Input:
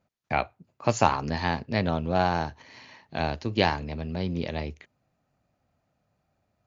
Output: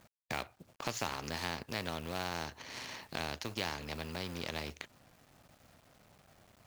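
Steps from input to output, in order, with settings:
mu-law and A-law mismatch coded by A
downward compressor 2 to 1, threshold −45 dBFS, peak gain reduction 16.5 dB
every bin compressed towards the loudest bin 2 to 1
level +3 dB

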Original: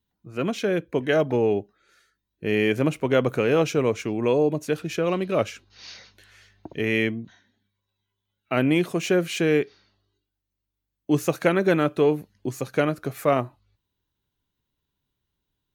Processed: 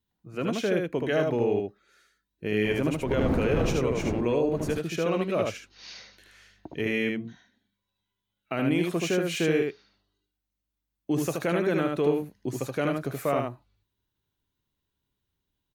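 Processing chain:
0:02.63–0:04.71: wind on the microphone 320 Hz −24 dBFS
brickwall limiter −14.5 dBFS, peak gain reduction 11 dB
single-tap delay 76 ms −3.5 dB
level −3 dB

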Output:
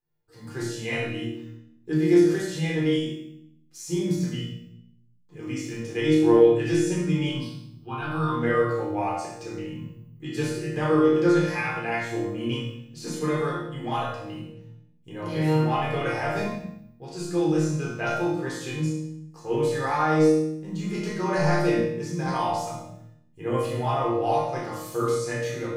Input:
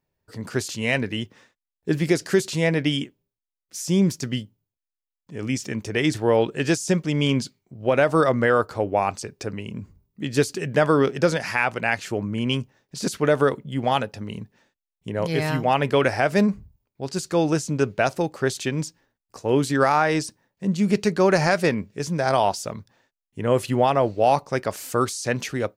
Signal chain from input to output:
0:07.29–0:08.32: phaser with its sweep stopped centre 2,000 Hz, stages 6
resonators tuned to a chord A#2 sus4, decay 0.65 s
rectangular room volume 1,000 cubic metres, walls furnished, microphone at 3.9 metres
level +8 dB

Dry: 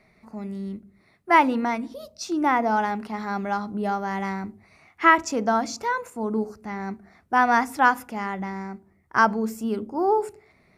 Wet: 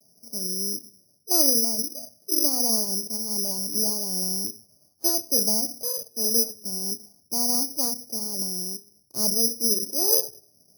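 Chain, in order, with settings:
formants moved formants +3 semitones
elliptic band-pass filter 100–620 Hz, stop band 70 dB
pitch vibrato 1.6 Hz 90 cents
bad sample-rate conversion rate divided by 8×, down none, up zero stuff
level −4.5 dB

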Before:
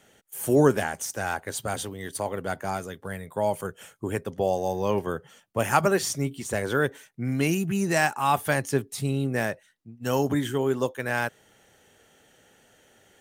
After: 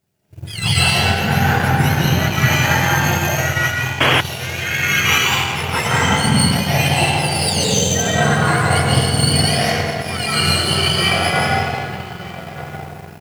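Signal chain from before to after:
frequency axis turned over on the octave scale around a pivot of 1,100 Hz
reversed playback
downward compressor, threshold −33 dBFS, peak gain reduction 16.5 dB
reversed playback
convolution reverb RT60 2.9 s, pre-delay 115 ms, DRR −9.5 dB
in parallel at −11.5 dB: bit-depth reduction 8 bits, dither triangular
on the sum: slap from a distant wall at 210 metres, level −11 dB
sound drawn into the spectrogram noise, 0:04.00–0:04.21, 240–3,400 Hz −19 dBFS
power curve on the samples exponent 1.4
automatic gain control gain up to 16 dB
leveller curve on the samples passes 1
level −1 dB

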